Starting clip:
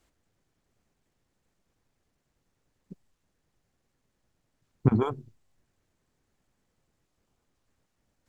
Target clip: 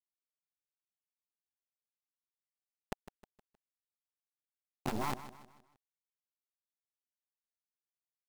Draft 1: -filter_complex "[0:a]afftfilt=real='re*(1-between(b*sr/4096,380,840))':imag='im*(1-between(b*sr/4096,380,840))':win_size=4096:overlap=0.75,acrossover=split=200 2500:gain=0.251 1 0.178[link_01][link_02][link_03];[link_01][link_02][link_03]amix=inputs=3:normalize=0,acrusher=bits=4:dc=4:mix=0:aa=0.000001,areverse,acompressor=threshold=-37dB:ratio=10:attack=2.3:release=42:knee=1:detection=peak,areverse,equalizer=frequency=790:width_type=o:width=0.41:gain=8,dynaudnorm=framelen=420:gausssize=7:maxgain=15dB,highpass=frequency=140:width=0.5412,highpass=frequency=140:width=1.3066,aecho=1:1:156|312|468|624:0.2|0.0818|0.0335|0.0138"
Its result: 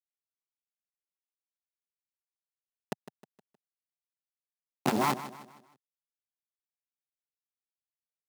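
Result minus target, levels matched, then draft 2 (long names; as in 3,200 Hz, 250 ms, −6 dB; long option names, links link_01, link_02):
downward compressor: peak gain reduction −9.5 dB; 125 Hz band −3.5 dB
-filter_complex "[0:a]afftfilt=real='re*(1-between(b*sr/4096,380,840))':imag='im*(1-between(b*sr/4096,380,840))':win_size=4096:overlap=0.75,acrossover=split=200 2500:gain=0.251 1 0.178[link_01][link_02][link_03];[link_01][link_02][link_03]amix=inputs=3:normalize=0,acrusher=bits=4:dc=4:mix=0:aa=0.000001,areverse,acompressor=threshold=-47.5dB:ratio=10:attack=2.3:release=42:knee=1:detection=peak,areverse,equalizer=frequency=790:width_type=o:width=0.41:gain=8,dynaudnorm=framelen=420:gausssize=7:maxgain=15dB,aecho=1:1:156|312|468|624:0.2|0.0818|0.0335|0.0138"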